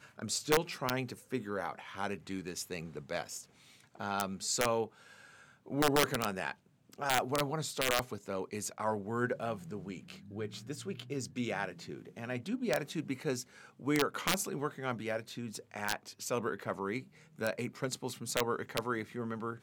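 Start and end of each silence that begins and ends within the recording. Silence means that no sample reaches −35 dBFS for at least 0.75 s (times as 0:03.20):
0:04.85–0:05.70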